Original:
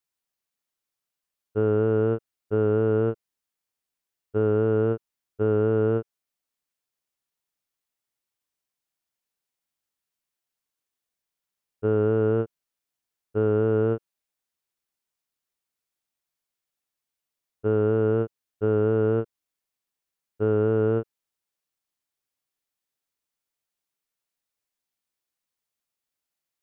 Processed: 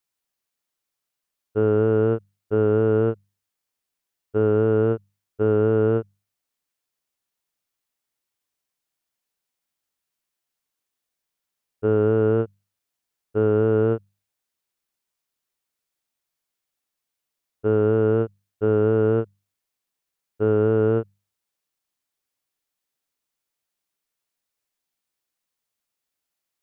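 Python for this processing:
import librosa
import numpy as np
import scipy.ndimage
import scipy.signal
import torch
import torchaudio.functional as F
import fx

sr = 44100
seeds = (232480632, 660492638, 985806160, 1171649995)

y = fx.hum_notches(x, sr, base_hz=50, count=4)
y = y * librosa.db_to_amplitude(3.0)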